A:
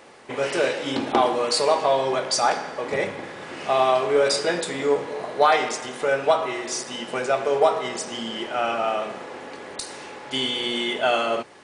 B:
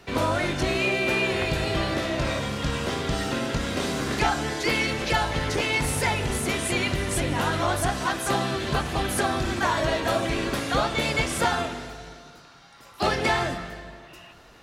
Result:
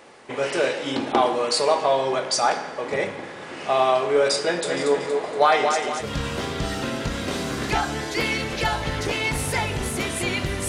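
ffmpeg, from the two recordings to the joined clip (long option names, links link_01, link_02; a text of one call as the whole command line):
ffmpeg -i cue0.wav -i cue1.wav -filter_complex "[0:a]asplit=3[link_01][link_02][link_03];[link_01]afade=type=out:start_time=4.63:duration=0.02[link_04];[link_02]aecho=1:1:234|468|702|936|1170:0.501|0.216|0.0927|0.0398|0.0171,afade=type=in:start_time=4.63:duration=0.02,afade=type=out:start_time=6.08:duration=0.02[link_05];[link_03]afade=type=in:start_time=6.08:duration=0.02[link_06];[link_04][link_05][link_06]amix=inputs=3:normalize=0,apad=whole_dur=10.68,atrim=end=10.68,atrim=end=6.08,asetpts=PTS-STARTPTS[link_07];[1:a]atrim=start=2.47:end=7.17,asetpts=PTS-STARTPTS[link_08];[link_07][link_08]acrossfade=duration=0.1:curve1=tri:curve2=tri" out.wav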